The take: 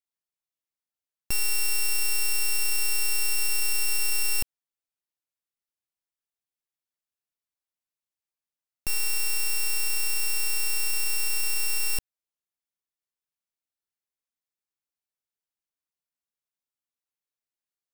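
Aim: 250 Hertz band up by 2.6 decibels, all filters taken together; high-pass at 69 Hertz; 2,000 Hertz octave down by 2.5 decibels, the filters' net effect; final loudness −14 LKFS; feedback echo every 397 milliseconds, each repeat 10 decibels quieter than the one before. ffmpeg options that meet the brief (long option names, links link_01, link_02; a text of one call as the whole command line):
ffmpeg -i in.wav -af "highpass=69,equalizer=frequency=250:width_type=o:gain=4,equalizer=frequency=2000:width_type=o:gain=-4.5,aecho=1:1:397|794|1191|1588:0.316|0.101|0.0324|0.0104,volume=12dB" out.wav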